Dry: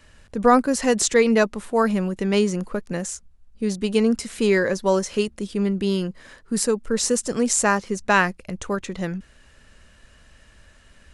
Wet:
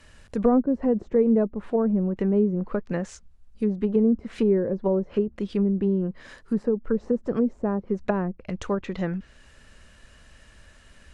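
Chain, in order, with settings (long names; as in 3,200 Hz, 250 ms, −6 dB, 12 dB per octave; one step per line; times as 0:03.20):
treble cut that deepens with the level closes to 440 Hz, closed at −18 dBFS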